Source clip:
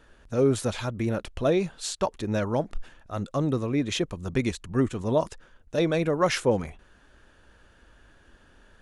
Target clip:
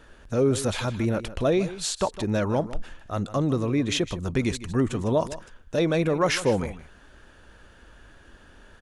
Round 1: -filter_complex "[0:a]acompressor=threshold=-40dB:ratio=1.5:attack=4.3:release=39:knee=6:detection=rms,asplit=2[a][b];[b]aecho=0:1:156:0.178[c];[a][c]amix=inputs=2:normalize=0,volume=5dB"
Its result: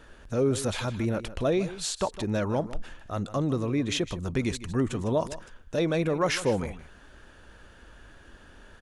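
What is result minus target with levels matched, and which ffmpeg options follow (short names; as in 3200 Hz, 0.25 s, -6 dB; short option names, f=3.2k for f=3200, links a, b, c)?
compressor: peak gain reduction +3 dB
-filter_complex "[0:a]acompressor=threshold=-31dB:ratio=1.5:attack=4.3:release=39:knee=6:detection=rms,asplit=2[a][b];[b]aecho=0:1:156:0.178[c];[a][c]amix=inputs=2:normalize=0,volume=5dB"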